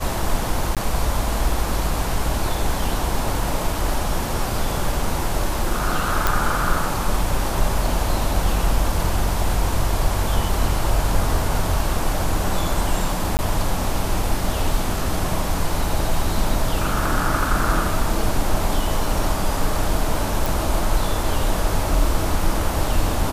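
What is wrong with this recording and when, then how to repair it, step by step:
0:00.75–0:00.77: drop-out 17 ms
0:06.27: click
0:13.37–0:13.39: drop-out 19 ms
0:20.46: click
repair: click removal
repair the gap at 0:00.75, 17 ms
repair the gap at 0:13.37, 19 ms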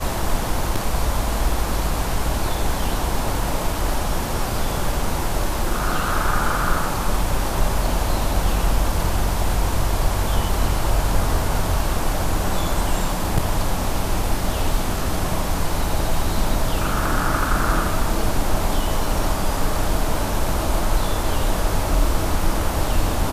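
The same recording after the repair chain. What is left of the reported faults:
none of them is left

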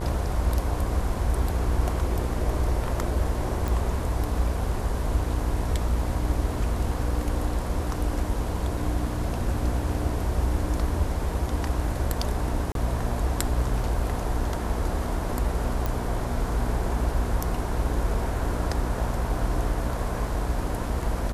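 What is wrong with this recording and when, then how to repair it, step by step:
mains buzz 60 Hz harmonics 18 −31 dBFS
0:03.68: click
0:12.72–0:12.75: drop-out 32 ms
0:15.86: click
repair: click removal
hum removal 60 Hz, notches 18
repair the gap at 0:12.72, 32 ms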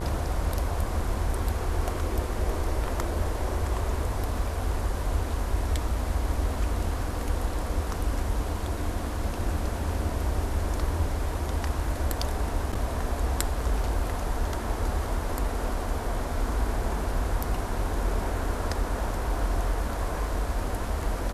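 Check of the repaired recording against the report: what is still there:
none of them is left

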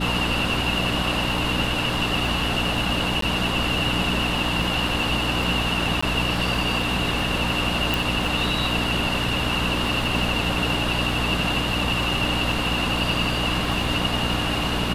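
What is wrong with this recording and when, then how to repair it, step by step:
surface crackle 33 per second −30 dBFS
mains hum 60 Hz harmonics 5 −28 dBFS
0:03.21–0:03.22: drop-out 13 ms
0:06.01–0:06.03: drop-out 15 ms
0:07.94: click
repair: click removal
hum removal 60 Hz, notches 5
repair the gap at 0:03.21, 13 ms
repair the gap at 0:06.01, 15 ms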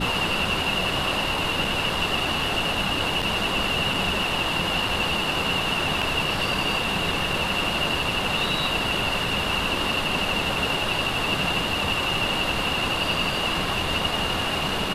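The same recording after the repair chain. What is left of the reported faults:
none of them is left

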